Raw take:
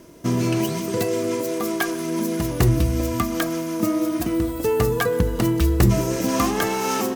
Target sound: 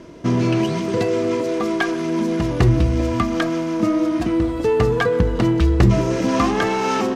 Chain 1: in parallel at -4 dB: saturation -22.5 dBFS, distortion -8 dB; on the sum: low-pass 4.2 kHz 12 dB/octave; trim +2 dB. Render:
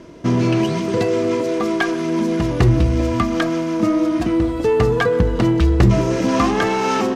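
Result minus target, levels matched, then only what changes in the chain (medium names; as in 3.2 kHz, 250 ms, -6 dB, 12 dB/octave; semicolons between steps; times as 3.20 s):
saturation: distortion -4 dB
change: saturation -31.5 dBFS, distortion -4 dB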